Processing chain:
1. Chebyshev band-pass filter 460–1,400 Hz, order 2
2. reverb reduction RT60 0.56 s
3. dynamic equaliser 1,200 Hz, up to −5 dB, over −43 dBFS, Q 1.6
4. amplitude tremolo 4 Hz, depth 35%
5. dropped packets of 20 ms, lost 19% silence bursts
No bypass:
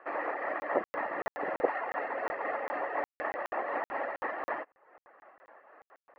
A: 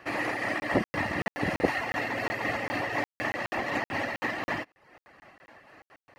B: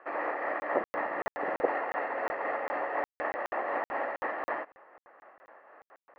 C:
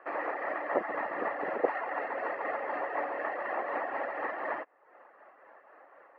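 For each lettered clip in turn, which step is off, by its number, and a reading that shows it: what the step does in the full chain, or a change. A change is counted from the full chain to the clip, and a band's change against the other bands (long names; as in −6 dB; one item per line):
1, 250 Hz band +10.5 dB
2, change in integrated loudness +1.5 LU
5, change in momentary loudness spread −1 LU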